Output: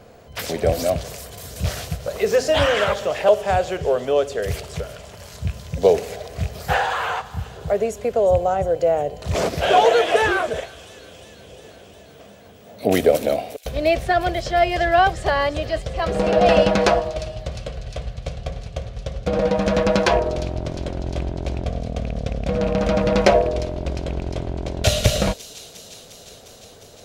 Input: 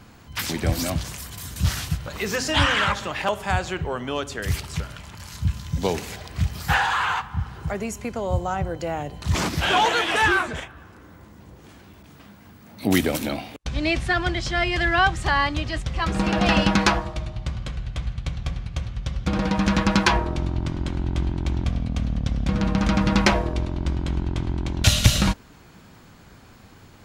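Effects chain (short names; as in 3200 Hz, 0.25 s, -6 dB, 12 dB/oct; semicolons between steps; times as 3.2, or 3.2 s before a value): rattling part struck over -17 dBFS, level -22 dBFS; band shelf 540 Hz +14.5 dB 1 oct; on a send: thin delay 0.354 s, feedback 74%, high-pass 4000 Hz, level -11.5 dB; on the sum: gain -2 dB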